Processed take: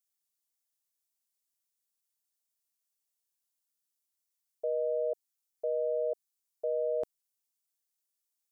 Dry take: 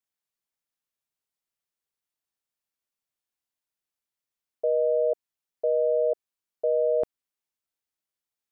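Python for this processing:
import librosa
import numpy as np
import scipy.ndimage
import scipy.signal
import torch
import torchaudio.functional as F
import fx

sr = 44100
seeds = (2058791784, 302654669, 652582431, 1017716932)

y = fx.bass_treble(x, sr, bass_db=-3, treble_db=14)
y = y * librosa.db_to_amplitude(-7.5)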